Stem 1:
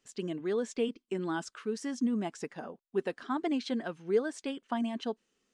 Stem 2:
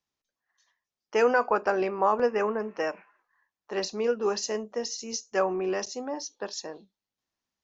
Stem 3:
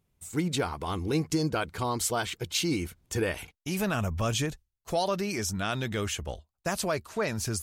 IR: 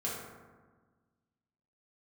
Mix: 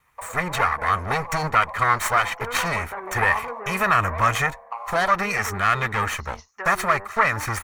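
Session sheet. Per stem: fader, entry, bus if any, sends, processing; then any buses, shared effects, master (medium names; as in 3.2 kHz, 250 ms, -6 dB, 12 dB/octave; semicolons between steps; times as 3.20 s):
-3.5 dB, 0.00 s, send -13.5 dB, cycle switcher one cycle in 2, muted; FFT band-pass 470–1200 Hz; waveshaping leveller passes 2; auto duck -11 dB, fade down 0.25 s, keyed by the third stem
-11.0 dB, 1.25 s, no send, low-pass that closes with the level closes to 830 Hz, closed at -24.5 dBFS; saturation -19.5 dBFS, distortion -17 dB
+2.0 dB, 0.00 s, no send, comb filter that takes the minimum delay 1.6 ms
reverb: on, RT60 1.4 s, pre-delay 3 ms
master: high-order bell 1.4 kHz +15 dB; band-stop 5 kHz, Q 15; tape noise reduction on one side only encoder only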